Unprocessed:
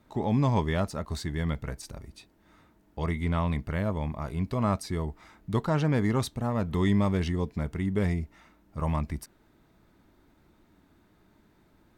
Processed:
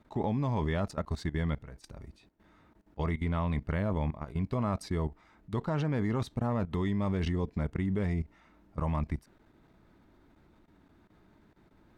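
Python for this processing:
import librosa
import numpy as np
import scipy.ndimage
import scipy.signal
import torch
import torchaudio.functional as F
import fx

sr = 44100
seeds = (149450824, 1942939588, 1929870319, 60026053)

y = fx.lowpass(x, sr, hz=3500.0, slope=6)
y = fx.level_steps(y, sr, step_db=16)
y = y * 10.0 ** (2.5 / 20.0)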